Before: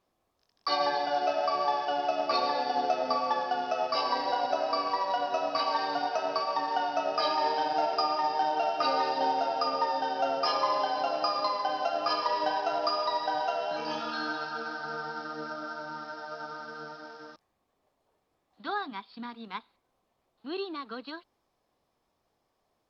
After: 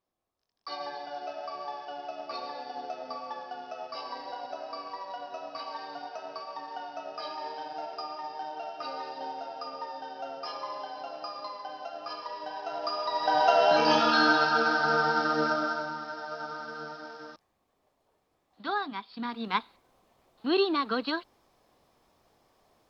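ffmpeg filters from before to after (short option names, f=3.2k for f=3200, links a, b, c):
-af "volume=19dB,afade=t=in:st=12.48:d=0.65:silence=0.375837,afade=t=in:st=13.13:d=0.55:silence=0.237137,afade=t=out:st=15.45:d=0.51:silence=0.354813,afade=t=in:st=19.11:d=0.46:silence=0.398107"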